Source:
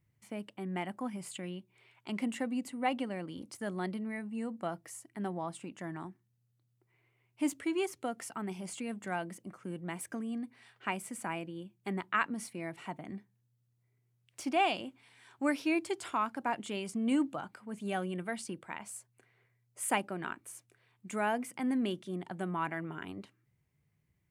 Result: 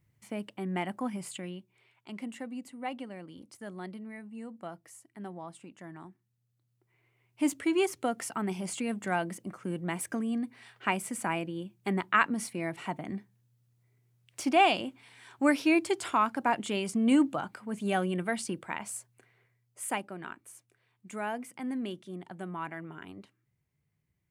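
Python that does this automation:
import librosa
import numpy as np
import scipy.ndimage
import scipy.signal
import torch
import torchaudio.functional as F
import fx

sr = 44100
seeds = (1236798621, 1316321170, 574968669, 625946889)

y = fx.gain(x, sr, db=fx.line((1.16, 4.0), (2.09, -5.0), (5.93, -5.0), (7.82, 6.0), (18.95, 6.0), (20.04, -3.0)))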